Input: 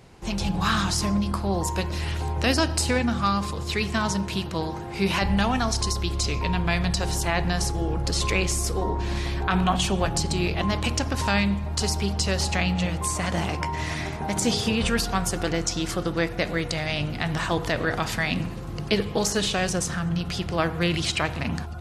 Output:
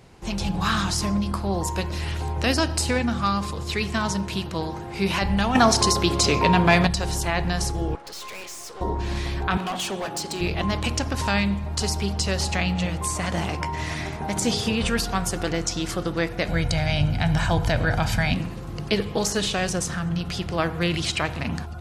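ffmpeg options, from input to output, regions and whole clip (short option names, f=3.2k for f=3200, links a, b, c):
-filter_complex "[0:a]asettb=1/sr,asplit=3[a][b][c];[a]atrim=end=5.554[d];[b]atrim=start=5.55:end=6.87,asetpts=PTS-STARTPTS,afade=t=in:d=0.004:c=qsin,afade=t=out:st=1.316:d=0.004:c=qsin,highpass=110,equalizer=f=620:w=0.44:g=5,acontrast=64[e];[c]atrim=start=6.866[f];[d][e]acrossfade=d=0.004:c1=hsin:c2=qsin[g];[g][f]acrossfade=d=0.004:c1=qsin:c2=hsin,asettb=1/sr,asplit=3[h][i][j];[h]atrim=end=7.954[k];[i]atrim=start=7.95:end=8.81,asetpts=PTS-STARTPTS,afade=t=in:d=0.004:c=qsin,afade=t=out:st=0.856:d=0.004:c=qsin,highpass=530,lowpass=7.7k,aeval=exprs='(tanh(56.2*val(0)+0.7)-tanh(0.7))/56.2':c=same[l];[j]atrim=start=8.806[m];[k][l]acrossfade=d=0.004:c1=hsin:c2=qsin[n];[n][m]acrossfade=d=0.004:c1=qsin:c2=hsin,asettb=1/sr,asplit=3[o][p][q];[o]atrim=end=9.574[r];[p]atrim=start=9.57:end=10.41,asetpts=PTS-STARTPTS,afade=t=in:d=0.004:c=qsin,afade=t=out:st=0.836:d=0.004:c=qsin,highpass=270,asoftclip=type=hard:threshold=-24.5dB[s];[q]atrim=start=10.406[t];[r][s]acrossfade=d=0.004:c1=hsin:c2=qsin[u];[u][t]acrossfade=d=0.004:c1=qsin:c2=hsin,asettb=1/sr,asplit=3[v][w][x];[v]atrim=end=16.484[y];[w]atrim=start=16.48:end=18.35,asetpts=PTS-STARTPTS,afade=t=in:d=0.004:c=qsin,afade=t=out:st=1.866:d=0.004:c=qsin,equalizer=f=69:w=0.57:g=9,aecho=1:1:1.3:0.5,atrim=end_sample=82467[z];[x]atrim=start=18.346[aa];[y][z]acrossfade=d=0.004:c1=hsin:c2=qsin[ab];[ab][aa]acrossfade=d=0.004:c1=qsin:c2=hsin"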